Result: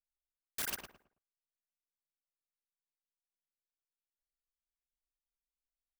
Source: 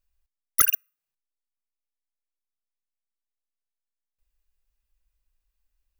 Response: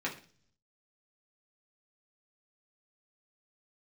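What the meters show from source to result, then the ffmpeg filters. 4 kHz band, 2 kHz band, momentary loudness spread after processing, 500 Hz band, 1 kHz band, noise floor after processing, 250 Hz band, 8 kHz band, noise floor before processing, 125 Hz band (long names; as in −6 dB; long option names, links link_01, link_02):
−7.0 dB, −11.0 dB, 12 LU, −5.5 dB, −16.5 dB, below −85 dBFS, can't be measured, −16.0 dB, below −85 dBFS, −10.5 dB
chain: -filter_complex "[0:a]agate=range=-31dB:threshold=-60dB:ratio=16:detection=peak,alimiter=limit=-13dB:level=0:latency=1:release=331,acompressor=threshold=-34dB:ratio=1.5,aeval=exprs='(mod(44.7*val(0)+1,2)-1)/44.7':channel_layout=same,asplit=2[link_01][link_02];[link_02]adelay=109,lowpass=frequency=1600:poles=1,volume=-3dB,asplit=2[link_03][link_04];[link_04]adelay=109,lowpass=frequency=1600:poles=1,volume=0.3,asplit=2[link_05][link_06];[link_06]adelay=109,lowpass=frequency=1600:poles=1,volume=0.3,asplit=2[link_07][link_08];[link_08]adelay=109,lowpass=frequency=1600:poles=1,volume=0.3[link_09];[link_01][link_03][link_05][link_07][link_09]amix=inputs=5:normalize=0,volume=2.5dB"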